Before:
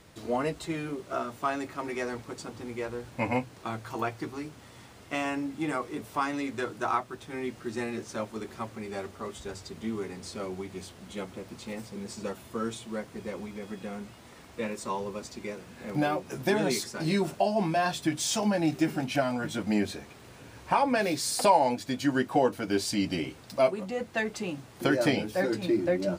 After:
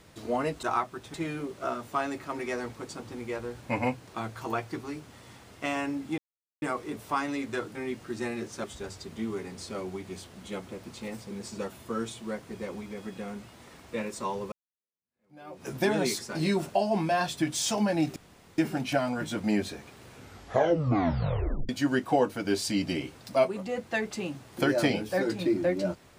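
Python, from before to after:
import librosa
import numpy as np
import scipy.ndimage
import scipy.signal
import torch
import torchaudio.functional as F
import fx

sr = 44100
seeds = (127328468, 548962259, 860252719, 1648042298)

y = fx.edit(x, sr, fx.insert_silence(at_s=5.67, length_s=0.44),
    fx.move(start_s=6.8, length_s=0.51, to_s=0.63),
    fx.cut(start_s=8.2, length_s=1.09),
    fx.fade_in_span(start_s=15.17, length_s=1.13, curve='exp'),
    fx.insert_room_tone(at_s=18.81, length_s=0.42),
    fx.tape_stop(start_s=20.33, length_s=1.59), tone=tone)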